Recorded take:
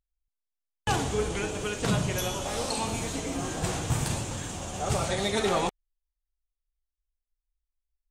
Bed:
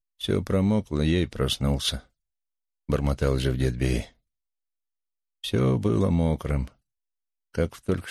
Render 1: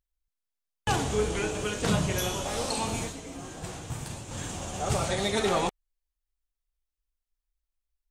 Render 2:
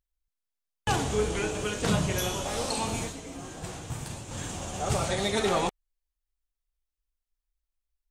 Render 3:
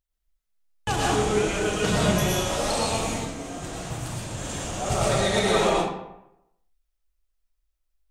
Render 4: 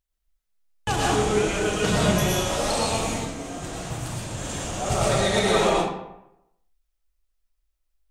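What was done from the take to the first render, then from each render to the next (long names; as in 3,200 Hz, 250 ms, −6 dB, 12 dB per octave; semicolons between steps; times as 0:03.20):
0:01.07–0:02.42: double-tracking delay 28 ms −7 dB; 0:03.02–0:04.40: duck −8.5 dB, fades 0.13 s
no processing that can be heard
comb and all-pass reverb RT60 0.84 s, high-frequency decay 0.65×, pre-delay 75 ms, DRR −4.5 dB
level +1 dB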